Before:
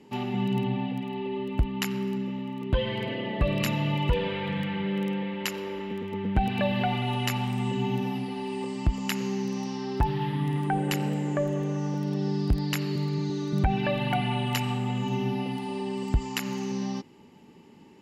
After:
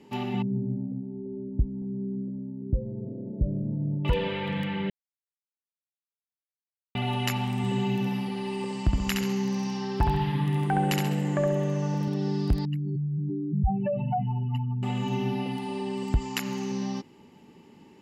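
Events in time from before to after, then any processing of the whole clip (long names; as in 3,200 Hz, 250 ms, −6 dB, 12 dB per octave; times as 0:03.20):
0:00.42–0:04.05: Gaussian smoothing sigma 21 samples
0:04.90–0:06.95: silence
0:07.57–0:12.08: repeating echo 67 ms, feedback 42%, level −3.5 dB
0:12.65–0:14.83: expanding power law on the bin magnitudes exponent 3.1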